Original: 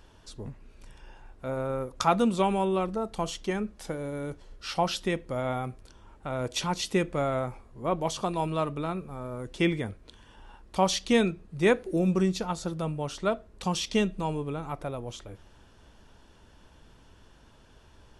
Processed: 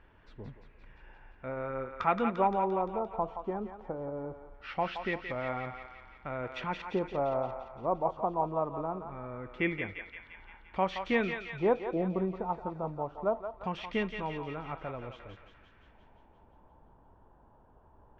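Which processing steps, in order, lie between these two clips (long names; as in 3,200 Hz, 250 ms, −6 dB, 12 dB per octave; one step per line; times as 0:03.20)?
high-shelf EQ 5,500 Hz −11 dB
auto-filter low-pass square 0.22 Hz 880–2,100 Hz
dynamic equaliser 130 Hz, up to −4 dB, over −36 dBFS, Q 0.73
feedback echo with a high-pass in the loop 173 ms, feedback 67%, high-pass 990 Hz, level −4.5 dB
level −5.5 dB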